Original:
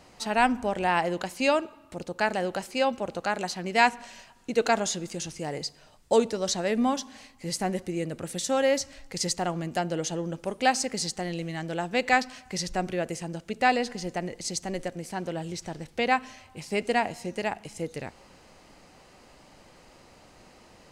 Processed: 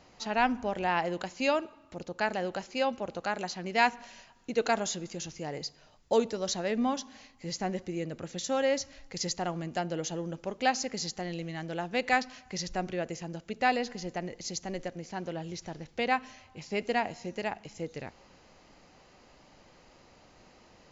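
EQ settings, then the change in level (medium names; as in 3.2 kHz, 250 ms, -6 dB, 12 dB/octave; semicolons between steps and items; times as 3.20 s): brick-wall FIR low-pass 7.4 kHz; -4.0 dB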